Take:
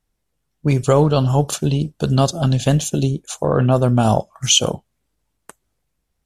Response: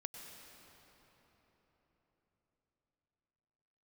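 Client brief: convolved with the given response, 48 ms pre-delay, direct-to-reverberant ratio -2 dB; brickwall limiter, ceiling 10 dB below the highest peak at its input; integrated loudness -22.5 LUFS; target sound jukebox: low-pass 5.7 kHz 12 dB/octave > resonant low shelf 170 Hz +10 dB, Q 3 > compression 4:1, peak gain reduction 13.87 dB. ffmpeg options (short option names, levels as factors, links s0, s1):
-filter_complex "[0:a]alimiter=limit=0.282:level=0:latency=1,asplit=2[s0][s1];[1:a]atrim=start_sample=2205,adelay=48[s2];[s1][s2]afir=irnorm=-1:irlink=0,volume=1.78[s3];[s0][s3]amix=inputs=2:normalize=0,lowpass=5700,lowshelf=f=170:t=q:w=3:g=10,acompressor=threshold=0.282:ratio=4,volume=0.398"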